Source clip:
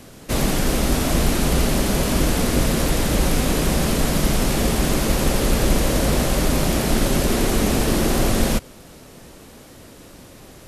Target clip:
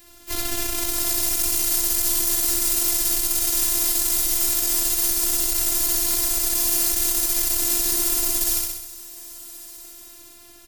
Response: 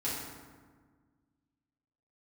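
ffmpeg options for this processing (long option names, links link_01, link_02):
-filter_complex "[0:a]aeval=exprs='val(0)+0.00282*(sin(2*PI*50*n/s)+sin(2*PI*2*50*n/s)/2+sin(2*PI*3*50*n/s)/3+sin(2*PI*4*50*n/s)/4+sin(2*PI*5*50*n/s)/5)':channel_layout=same,equalizer=frequency=440:width_type=o:width=0.37:gain=-10.5,asplit=4[link_01][link_02][link_03][link_04];[link_02]asetrate=52444,aresample=44100,atempo=0.840896,volume=-9dB[link_05];[link_03]asetrate=58866,aresample=44100,atempo=0.749154,volume=-15dB[link_06];[link_04]asetrate=66075,aresample=44100,atempo=0.66742,volume=-10dB[link_07];[link_01][link_05][link_06][link_07]amix=inputs=4:normalize=0,equalizer=frequency=10000:width_type=o:width=1.7:gain=-8,acrossover=split=610|5300[link_08][link_09][link_10];[link_10]dynaudnorm=framelen=290:gausssize=7:maxgain=12.5dB[link_11];[link_08][link_09][link_11]amix=inputs=3:normalize=0,aeval=exprs='(tanh(3.16*val(0)+0.8)-tanh(0.8))/3.16':channel_layout=same,asplit=2[link_12][link_13];[link_13]aecho=0:1:64|128|192|256|320|384|448:0.631|0.334|0.177|0.0939|0.0498|0.0264|0.014[link_14];[link_12][link_14]amix=inputs=2:normalize=0,afftfilt=real='hypot(re,im)*cos(PI*b)':imag='0':win_size=512:overlap=0.75,alimiter=limit=-10.5dB:level=0:latency=1:release=166,crystalizer=i=5:c=0,volume=-3.5dB"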